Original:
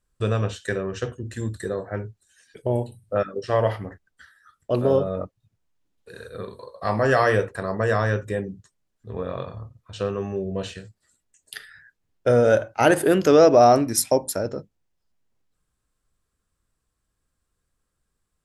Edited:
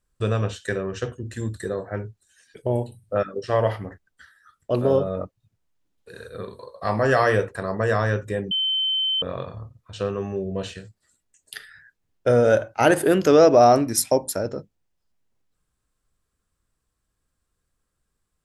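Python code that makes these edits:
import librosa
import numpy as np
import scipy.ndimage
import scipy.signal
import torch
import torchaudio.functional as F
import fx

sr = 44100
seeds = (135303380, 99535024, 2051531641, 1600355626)

y = fx.edit(x, sr, fx.bleep(start_s=8.51, length_s=0.71, hz=3080.0, db=-20.0), tone=tone)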